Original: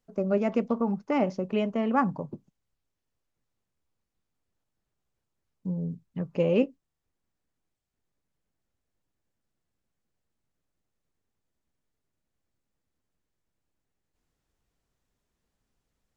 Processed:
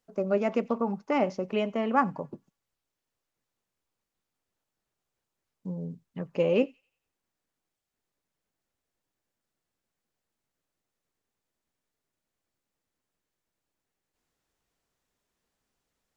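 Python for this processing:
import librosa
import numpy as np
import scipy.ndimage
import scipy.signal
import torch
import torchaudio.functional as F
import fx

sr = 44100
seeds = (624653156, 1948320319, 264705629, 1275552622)

y = fx.low_shelf(x, sr, hz=210.0, db=-11.0)
y = fx.echo_wet_highpass(y, sr, ms=90, feedback_pct=40, hz=2000.0, wet_db=-23.0)
y = y * 10.0 ** (2.0 / 20.0)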